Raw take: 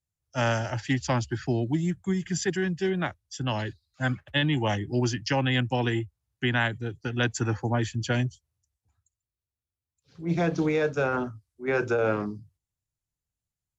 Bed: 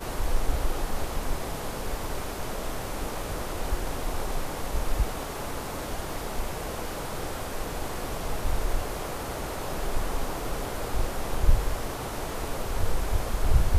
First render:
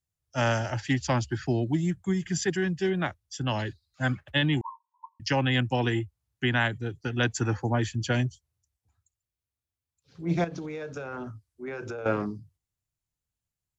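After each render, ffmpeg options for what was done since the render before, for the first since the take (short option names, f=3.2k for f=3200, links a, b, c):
-filter_complex "[0:a]asettb=1/sr,asplit=3[a][b][c];[a]atrim=end=4.614[d];[b]atrim=start=4.61:end=5.2,asetpts=PTS-STARTPTS,afade=t=in:d=0.004:c=qsin,afade=t=out:st=0.586:d=0.004:c=qsin,asuperpass=centerf=1000:order=20:qfactor=5.3[e];[c]atrim=start=5.196[f];[d][e]acrossfade=d=0.004:c1=hsin:c2=qsin[g];[g][f]acrossfade=d=0.004:c1=qsin:c2=hsin,asettb=1/sr,asplit=3[h][i][j];[h]atrim=end=10.444[k];[i]atrim=start=10.44:end=12.06,asetpts=PTS-STARTPTS,afade=t=in:d=0.004:c=qsin,afade=t=out:st=1.616:d=0.004:c=qsin,acompressor=threshold=-32dB:ratio=12:attack=3.2:release=140:knee=1:detection=peak[l];[j]atrim=start=12.056[m];[k][l]acrossfade=d=0.004:c1=hsin:c2=qsin[n];[n][m]acrossfade=d=0.004:c1=qsin:c2=hsin"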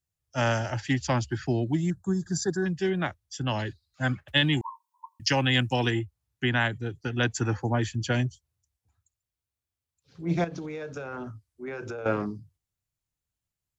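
-filter_complex "[0:a]asettb=1/sr,asplit=3[a][b][c];[a]atrim=end=1.904[d];[b]atrim=start=1.9:end=2.66,asetpts=PTS-STARTPTS,afade=t=in:d=0.004:c=qsin,afade=t=out:st=0.756:d=0.004:c=qsin,asuperstop=centerf=2500:order=12:qfactor=1.2[e];[c]atrim=start=2.656[f];[d][e]acrossfade=d=0.004:c1=hsin:c2=qsin[g];[g][f]acrossfade=d=0.004:c1=qsin:c2=hsin,asettb=1/sr,asplit=3[h][i][j];[h]atrim=end=4.284[k];[i]atrim=start=4.28:end=5.91,asetpts=PTS-STARTPTS,afade=t=in:d=0.004:c=qsin,afade=t=out:st=1.626:d=0.004:c=qsin,highshelf=f=3.4k:g=10[l];[j]atrim=start=5.906[m];[k][l]acrossfade=d=0.004:c1=hsin:c2=qsin[n];[n][m]acrossfade=d=0.004:c1=qsin:c2=hsin"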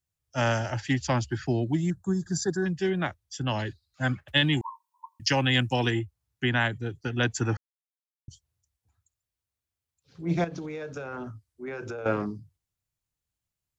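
-filter_complex "[0:a]asplit=3[a][b][c];[a]atrim=end=7.57,asetpts=PTS-STARTPTS,afade=t=out:st=7.566:d=0.004:c=hsin[d];[b]atrim=start=7.57:end=8.28,asetpts=PTS-STARTPTS,volume=0[e];[c]atrim=start=8.28,asetpts=PTS-STARTPTS,afade=t=in:d=0.004:c=hsin[f];[d][e][f]concat=n=3:v=0:a=1"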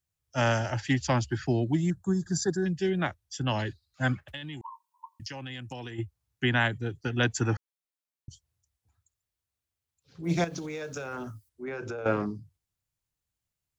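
-filter_complex "[0:a]asettb=1/sr,asplit=3[a][b][c];[a]atrim=end=2.554[d];[b]atrim=start=2.55:end=2.99,asetpts=PTS-STARTPTS,afade=t=in:d=0.004:c=qsin,afade=t=out:st=0.436:d=0.004:c=qsin,equalizer=f=1.1k:t=o:w=1:g=-10.5[e];[c]atrim=start=2.986[f];[d][e]acrossfade=d=0.004:c1=hsin:c2=qsin[g];[g][f]acrossfade=d=0.004:c1=qsin:c2=hsin,asplit=3[h][i][j];[h]afade=t=out:st=4.27:d=0.02[k];[i]acompressor=threshold=-36dB:ratio=10:attack=3.2:release=140:knee=1:detection=peak,afade=t=in:st=4.27:d=0.02,afade=t=out:st=5.98:d=0.02[l];[j]afade=t=in:st=5.98:d=0.02[m];[k][l][m]amix=inputs=3:normalize=0,asplit=3[n][o][p];[n]afade=t=out:st=10.23:d=0.02[q];[o]aemphasis=mode=production:type=75fm,afade=t=in:st=10.23:d=0.02,afade=t=out:st=11.48:d=0.02[r];[p]afade=t=in:st=11.48:d=0.02[s];[q][r][s]amix=inputs=3:normalize=0"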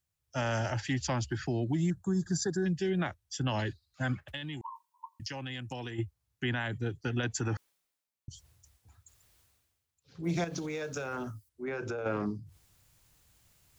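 -af "alimiter=limit=-22.5dB:level=0:latency=1:release=68,areverse,acompressor=mode=upward:threshold=-47dB:ratio=2.5,areverse"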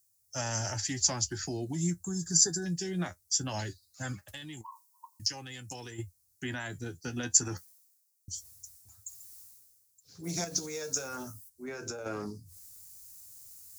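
-af "aexciter=amount=9.8:drive=3.6:freq=4.6k,flanger=delay=9.1:depth=3.2:regen=45:speed=0.21:shape=triangular"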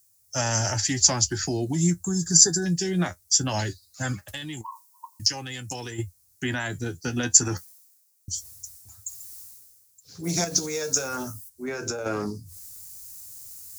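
-af "volume=8.5dB,alimiter=limit=-2dB:level=0:latency=1"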